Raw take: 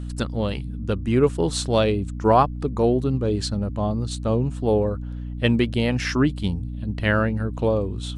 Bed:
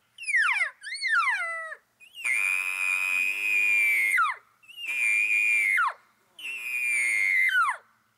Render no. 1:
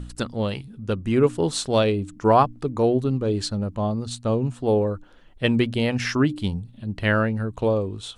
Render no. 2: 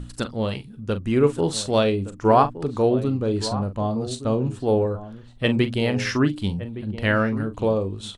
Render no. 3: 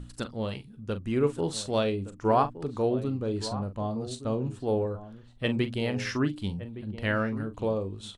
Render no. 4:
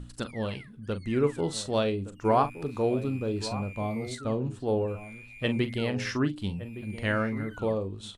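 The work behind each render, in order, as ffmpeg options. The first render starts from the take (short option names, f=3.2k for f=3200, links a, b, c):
-af "bandreject=f=60:t=h:w=4,bandreject=f=120:t=h:w=4,bandreject=f=180:t=h:w=4,bandreject=f=240:t=h:w=4,bandreject=f=300:t=h:w=4"
-filter_complex "[0:a]asplit=2[a][b];[b]adelay=41,volume=-11.5dB[c];[a][c]amix=inputs=2:normalize=0,asplit=2[d][e];[e]adelay=1166,volume=-13dB,highshelf=f=4k:g=-26.2[f];[d][f]amix=inputs=2:normalize=0"
-af "volume=-7dB"
-filter_complex "[1:a]volume=-25dB[a];[0:a][a]amix=inputs=2:normalize=0"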